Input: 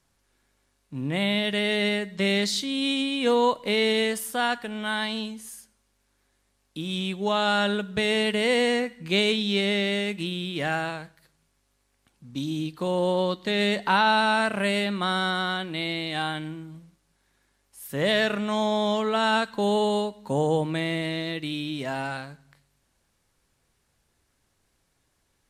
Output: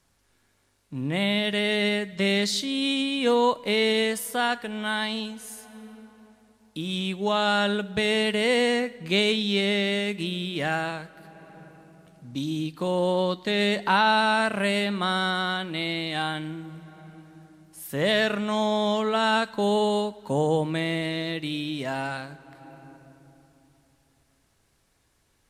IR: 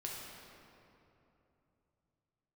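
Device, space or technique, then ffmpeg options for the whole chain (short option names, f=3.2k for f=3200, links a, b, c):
ducked reverb: -filter_complex "[0:a]asplit=3[a][b][c];[1:a]atrim=start_sample=2205[d];[b][d]afir=irnorm=-1:irlink=0[e];[c]apad=whole_len=1124169[f];[e][f]sidechaincompress=threshold=-45dB:ratio=5:attack=43:release=516,volume=-4dB[g];[a][g]amix=inputs=2:normalize=0"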